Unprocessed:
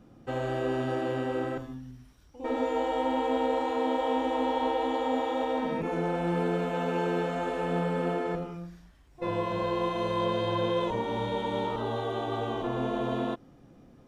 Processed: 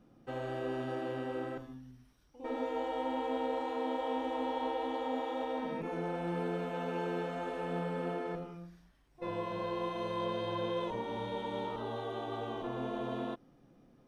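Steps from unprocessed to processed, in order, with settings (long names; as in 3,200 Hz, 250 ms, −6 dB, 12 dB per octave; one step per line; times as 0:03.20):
parametric band 72 Hz −10.5 dB 0.73 octaves
notch filter 7,200 Hz, Q 7.2
level −7 dB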